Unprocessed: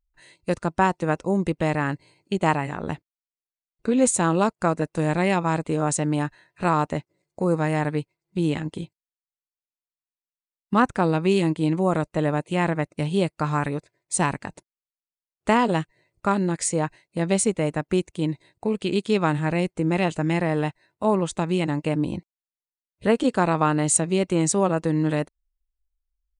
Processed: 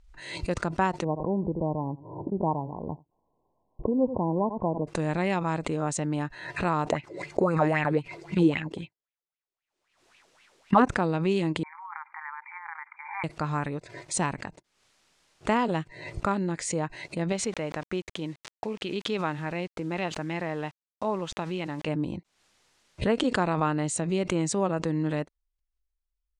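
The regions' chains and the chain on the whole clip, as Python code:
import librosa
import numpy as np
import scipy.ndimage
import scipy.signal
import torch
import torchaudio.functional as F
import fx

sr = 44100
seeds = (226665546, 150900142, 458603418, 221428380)

y = fx.chain(x, sr, fx.brickwall_lowpass(high_hz=1100.0),
    fx.echo_single(ms=84, db=-23.0), at=(1.04, 4.87))
y = fx.chain(y, sr, fx.dynamic_eq(hz=420.0, q=1.8, threshold_db=-37.0, ratio=4.0, max_db=-5),
    fx.bell_lfo(hz=3.8, low_hz=350.0, high_hz=2700.0, db=17), at=(6.88, 10.88))
y = fx.chain(y, sr, fx.brickwall_bandpass(low_hz=790.0, high_hz=2400.0),
    fx.over_compress(threshold_db=-34.0, ratio=-1.0), at=(11.63, 13.24))
y = fx.chain(y, sr, fx.lowpass(hz=5200.0, slope=12),
    fx.quant_dither(seeds[0], bits=8, dither='none'),
    fx.low_shelf(hz=380.0, db=-7.0), at=(17.32, 21.88))
y = scipy.signal.sosfilt(scipy.signal.bessel(4, 6200.0, 'lowpass', norm='mag', fs=sr, output='sos'), y)
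y = fx.pre_swell(y, sr, db_per_s=67.0)
y = F.gain(torch.from_numpy(y), -5.5).numpy()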